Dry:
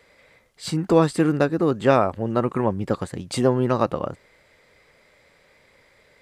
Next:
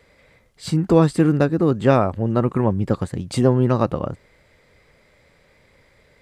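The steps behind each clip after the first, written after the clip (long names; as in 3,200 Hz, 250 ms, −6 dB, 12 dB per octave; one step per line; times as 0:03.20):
low-shelf EQ 240 Hz +10 dB
level −1 dB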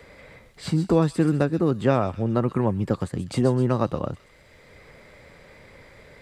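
delay with a high-pass on its return 128 ms, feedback 39%, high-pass 3,100 Hz, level −7.5 dB
multiband upward and downward compressor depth 40%
level −4 dB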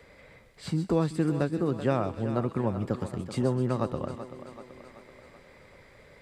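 feedback echo with a high-pass in the loop 382 ms, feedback 59%, high-pass 180 Hz, level −11 dB
level −6 dB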